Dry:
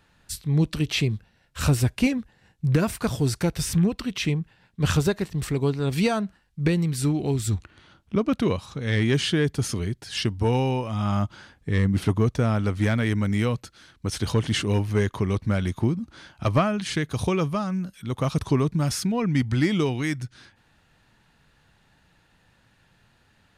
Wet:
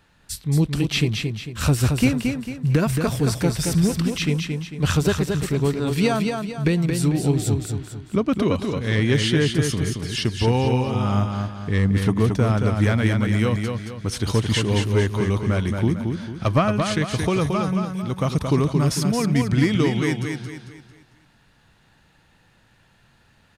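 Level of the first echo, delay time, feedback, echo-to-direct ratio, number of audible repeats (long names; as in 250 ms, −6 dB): −5.0 dB, 224 ms, 40%, −4.0 dB, 4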